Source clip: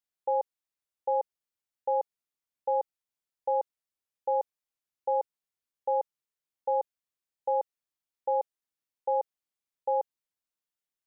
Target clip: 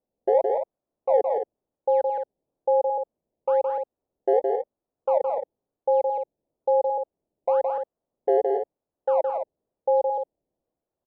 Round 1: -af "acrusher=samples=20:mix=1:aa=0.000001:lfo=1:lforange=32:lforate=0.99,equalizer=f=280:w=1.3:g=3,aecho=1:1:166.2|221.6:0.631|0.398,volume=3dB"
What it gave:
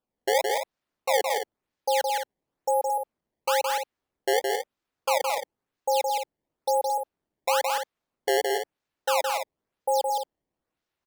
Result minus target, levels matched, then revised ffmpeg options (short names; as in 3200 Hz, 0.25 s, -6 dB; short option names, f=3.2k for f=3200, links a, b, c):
500 Hz band -3.0 dB
-af "acrusher=samples=20:mix=1:aa=0.000001:lfo=1:lforange=32:lforate=0.99,lowpass=f=610:t=q:w=1.8,equalizer=f=280:w=1.3:g=3,aecho=1:1:166.2|221.6:0.631|0.398,volume=3dB"